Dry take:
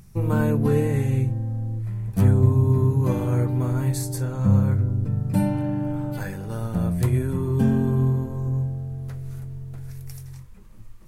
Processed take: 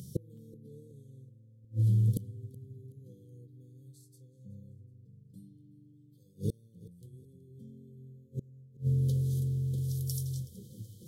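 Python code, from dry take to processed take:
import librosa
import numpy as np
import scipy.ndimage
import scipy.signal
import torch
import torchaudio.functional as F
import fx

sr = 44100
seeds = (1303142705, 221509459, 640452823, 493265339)

y = scipy.signal.sosfilt(scipy.signal.butter(4, 100.0, 'highpass', fs=sr, output='sos'), x)
y = fx.peak_eq(y, sr, hz=300.0, db=-4.0, octaves=0.8)
y = fx.gate_flip(y, sr, shuts_db=-24.0, range_db=-35)
y = fx.brickwall_bandstop(y, sr, low_hz=550.0, high_hz=3000.0)
y = fx.echo_feedback(y, sr, ms=374, feedback_pct=37, wet_db=-21.0)
y = y * 10.0 ** (6.0 / 20.0)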